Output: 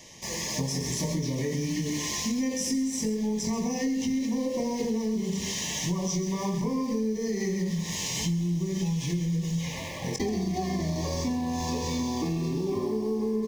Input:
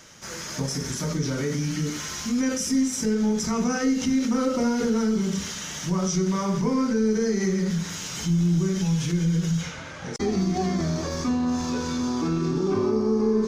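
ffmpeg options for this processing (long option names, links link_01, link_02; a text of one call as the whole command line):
ffmpeg -i in.wav -filter_complex "[0:a]aecho=1:1:132:0.316,asplit=2[link_01][link_02];[link_02]acrusher=bits=5:mix=0:aa=0.000001,volume=-9.5dB[link_03];[link_01][link_03]amix=inputs=2:normalize=0,asuperstop=centerf=1400:order=20:qfactor=2.5,asplit=2[link_04][link_05];[link_05]adelay=23,volume=-10.5dB[link_06];[link_04][link_06]amix=inputs=2:normalize=0,acompressor=threshold=-26dB:ratio=6" out.wav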